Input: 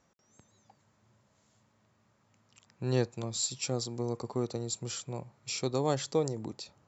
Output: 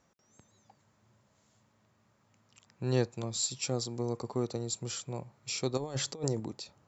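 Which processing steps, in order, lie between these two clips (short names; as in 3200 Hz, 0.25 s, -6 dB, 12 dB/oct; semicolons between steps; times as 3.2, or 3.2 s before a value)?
5.77–6.4 negative-ratio compressor -33 dBFS, ratio -0.5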